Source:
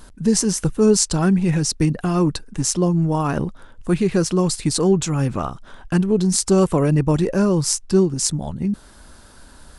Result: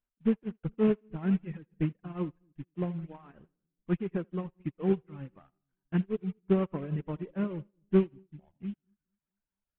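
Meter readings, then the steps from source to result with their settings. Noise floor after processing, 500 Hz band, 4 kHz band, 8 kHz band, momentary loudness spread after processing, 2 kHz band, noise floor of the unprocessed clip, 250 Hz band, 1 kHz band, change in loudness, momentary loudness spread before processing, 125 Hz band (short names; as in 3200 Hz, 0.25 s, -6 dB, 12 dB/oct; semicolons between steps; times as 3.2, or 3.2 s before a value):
under -85 dBFS, -13.0 dB, under -25 dB, under -40 dB, 16 LU, -15.0 dB, -46 dBFS, -12.5 dB, -18.0 dB, -13.0 dB, 8 LU, -14.5 dB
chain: CVSD 16 kbps; reverb removal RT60 1.4 s; dynamic EQ 190 Hz, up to +3 dB, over -26 dBFS, Q 1.2; split-band echo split 380 Hz, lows 0.222 s, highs 81 ms, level -14 dB; upward expander 2.5:1, over -37 dBFS; gain -7 dB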